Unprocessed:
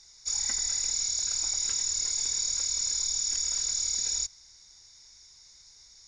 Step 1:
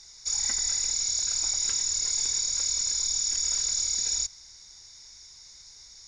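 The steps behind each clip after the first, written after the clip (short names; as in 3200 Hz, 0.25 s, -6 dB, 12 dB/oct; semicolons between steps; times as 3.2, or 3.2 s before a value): limiter -23.5 dBFS, peak gain reduction 5 dB; gain +5 dB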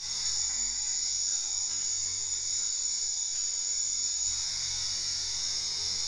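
negative-ratio compressor -35 dBFS, ratio -0.5; flutter echo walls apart 3.7 m, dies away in 1.2 s; ensemble effect; gain +4 dB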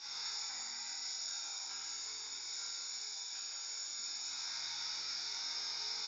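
speaker cabinet 250–4600 Hz, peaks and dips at 810 Hz +6 dB, 1400 Hz +7 dB, 2000 Hz -7 dB, 3400 Hz -3 dB; echo 0.164 s -6.5 dB; reverb RT60 0.45 s, pre-delay 21 ms, DRR 5.5 dB; gain -4 dB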